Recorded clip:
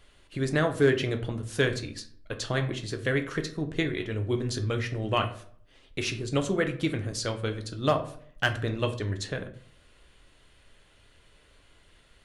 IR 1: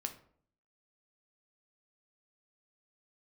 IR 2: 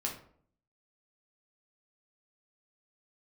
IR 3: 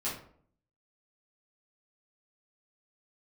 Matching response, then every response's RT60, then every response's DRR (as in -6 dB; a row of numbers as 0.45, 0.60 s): 1; 0.60, 0.60, 0.60 s; 5.5, -1.5, -10.0 dB